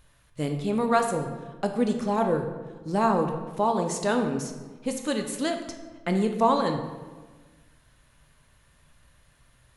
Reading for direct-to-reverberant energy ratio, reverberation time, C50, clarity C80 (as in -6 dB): 4.5 dB, 1.4 s, 7.0 dB, 8.5 dB